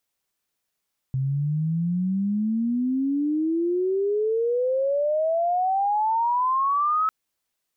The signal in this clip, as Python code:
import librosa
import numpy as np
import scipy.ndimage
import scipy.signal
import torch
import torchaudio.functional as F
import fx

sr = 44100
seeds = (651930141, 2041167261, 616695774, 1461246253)

y = fx.chirp(sr, length_s=5.95, from_hz=130.0, to_hz=1300.0, law='logarithmic', from_db=-21.5, to_db=-19.0)